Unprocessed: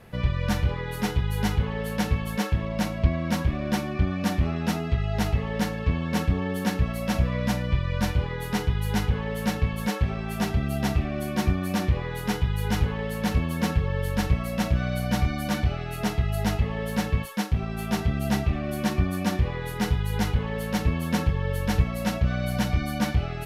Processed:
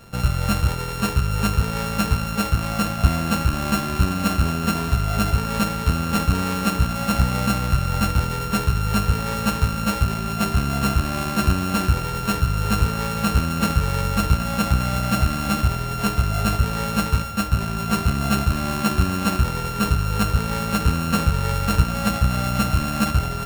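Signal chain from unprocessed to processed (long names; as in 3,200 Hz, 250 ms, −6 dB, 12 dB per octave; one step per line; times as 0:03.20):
samples sorted by size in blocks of 32 samples
feedback delay with all-pass diffusion 850 ms, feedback 66%, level −15.5 dB
level +4 dB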